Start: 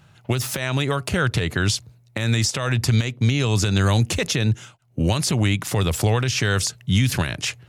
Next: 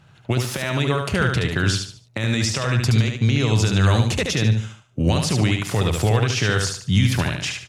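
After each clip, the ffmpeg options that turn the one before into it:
-filter_complex "[0:a]highshelf=f=9500:g=-10.5,asplit=2[s0][s1];[s1]aecho=0:1:73|146|219|292:0.596|0.197|0.0649|0.0214[s2];[s0][s2]amix=inputs=2:normalize=0"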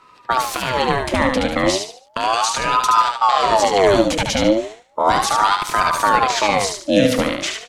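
-af "aeval=exprs='val(0)*sin(2*PI*760*n/s+760*0.5/0.35*sin(2*PI*0.35*n/s))':c=same,volume=1.88"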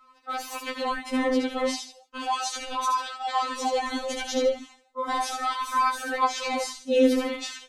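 -af "afftfilt=real='re*3.46*eq(mod(b,12),0)':imag='im*3.46*eq(mod(b,12),0)':win_size=2048:overlap=0.75,volume=0.376"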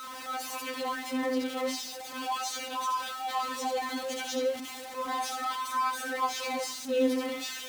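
-af "aeval=exprs='val(0)+0.5*0.0376*sgn(val(0))':c=same,highpass=63,volume=0.422"

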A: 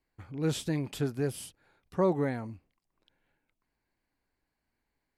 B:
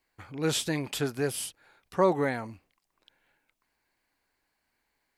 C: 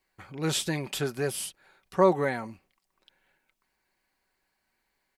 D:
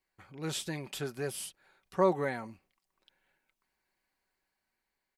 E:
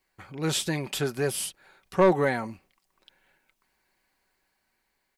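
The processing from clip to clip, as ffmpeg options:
-af "lowshelf=f=420:g=-12,volume=2.66"
-af "aecho=1:1:5.3:0.37"
-af "dynaudnorm=f=480:g=5:m=1.41,volume=0.398"
-af "asoftclip=type=tanh:threshold=0.0944,volume=2.82"

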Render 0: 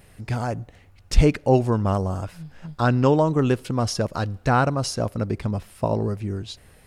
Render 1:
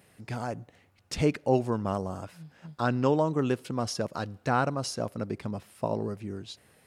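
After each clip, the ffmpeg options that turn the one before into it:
-af "highpass=140,volume=0.501"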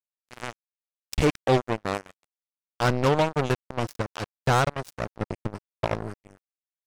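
-af "asubboost=boost=11:cutoff=71,acrusher=bits=3:mix=0:aa=0.5,volume=1.5"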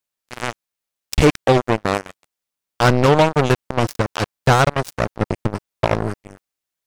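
-af "alimiter=level_in=5.96:limit=0.891:release=50:level=0:latency=1,volume=0.631"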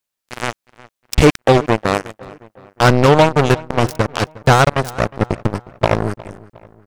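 -filter_complex "[0:a]asplit=2[s0][s1];[s1]adelay=360,lowpass=f=3200:p=1,volume=0.1,asplit=2[s2][s3];[s3]adelay=360,lowpass=f=3200:p=1,volume=0.45,asplit=2[s4][s5];[s5]adelay=360,lowpass=f=3200:p=1,volume=0.45[s6];[s0][s2][s4][s6]amix=inputs=4:normalize=0,volume=1.41"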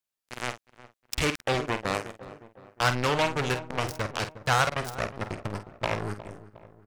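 -filter_complex "[0:a]acrossover=split=980[s0][s1];[s0]asoftclip=type=tanh:threshold=0.158[s2];[s2][s1]amix=inputs=2:normalize=0,asplit=2[s3][s4];[s4]adelay=48,volume=0.316[s5];[s3][s5]amix=inputs=2:normalize=0,volume=0.376"

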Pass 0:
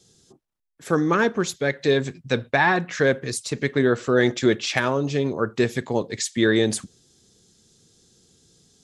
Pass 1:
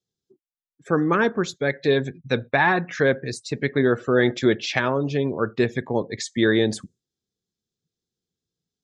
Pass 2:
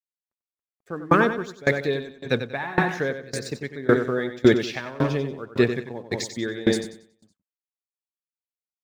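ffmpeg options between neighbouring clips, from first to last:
-af "afftdn=nr=27:nf=-40,lowpass=5400"
-filter_complex "[0:a]aeval=exprs='sgn(val(0))*max(abs(val(0))-0.00422,0)':c=same,asplit=2[s0][s1];[s1]aecho=0:1:93|186|279|372|465|558:0.501|0.241|0.115|0.0554|0.0266|0.0128[s2];[s0][s2]amix=inputs=2:normalize=0,aeval=exprs='val(0)*pow(10,-23*if(lt(mod(1.8*n/s,1),2*abs(1.8)/1000),1-mod(1.8*n/s,1)/(2*abs(1.8)/1000),(mod(1.8*n/s,1)-2*abs(1.8)/1000)/(1-2*abs(1.8)/1000))/20)':c=same,volume=1.68"

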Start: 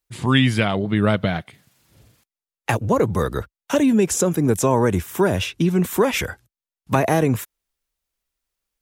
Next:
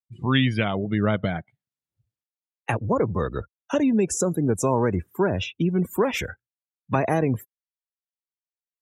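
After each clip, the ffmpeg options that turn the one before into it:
-af "afftdn=nr=33:nf=-31,volume=0.631"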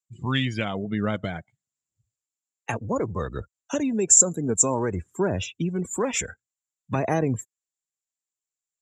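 -af "aphaser=in_gain=1:out_gain=1:delay=4.5:decay=0.27:speed=0.56:type=sinusoidal,lowpass=f=7300:t=q:w=13,volume=0.631"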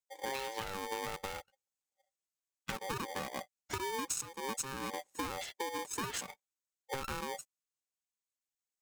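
-af "acompressor=threshold=0.0398:ratio=16,aeval=exprs='val(0)*sgn(sin(2*PI*670*n/s))':c=same,volume=0.473"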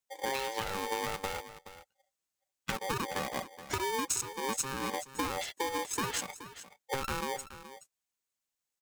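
-af "aecho=1:1:424:0.2,volume=1.68"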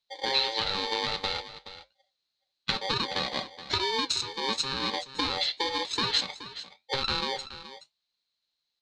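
-af "flanger=delay=8.9:depth=5.4:regen=-69:speed=1:shape=triangular,lowpass=f=4100:t=q:w=9.6,volume=2"

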